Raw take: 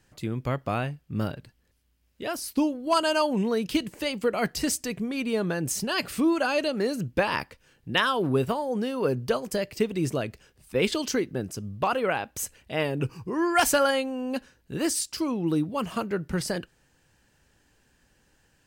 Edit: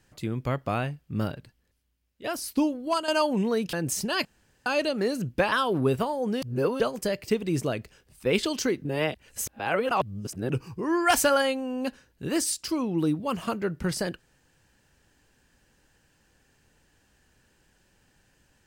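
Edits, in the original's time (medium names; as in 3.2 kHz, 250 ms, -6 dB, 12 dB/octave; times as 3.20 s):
1.24–2.24 s: fade out, to -10.5 dB
2.81–3.08 s: fade out, to -10 dB
3.73–5.52 s: delete
6.04–6.45 s: room tone
7.31–8.01 s: delete
8.91–9.29 s: reverse
11.34–12.99 s: reverse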